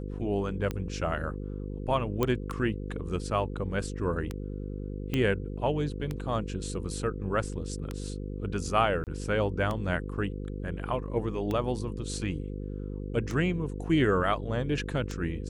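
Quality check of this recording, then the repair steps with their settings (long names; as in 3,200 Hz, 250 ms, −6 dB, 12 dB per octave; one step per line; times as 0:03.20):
mains buzz 50 Hz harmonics 10 −36 dBFS
scratch tick 33 1/3 rpm −19 dBFS
0:02.23: click −13 dBFS
0:05.14: click −16 dBFS
0:09.04–0:09.07: drop-out 28 ms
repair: click removal
hum removal 50 Hz, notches 10
repair the gap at 0:09.04, 28 ms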